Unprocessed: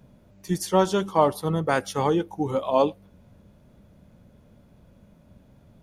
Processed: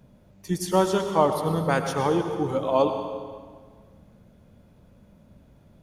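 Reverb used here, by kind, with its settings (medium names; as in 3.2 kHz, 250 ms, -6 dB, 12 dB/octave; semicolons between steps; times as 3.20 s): plate-style reverb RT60 1.7 s, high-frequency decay 0.85×, pre-delay 85 ms, DRR 6 dB; trim -1 dB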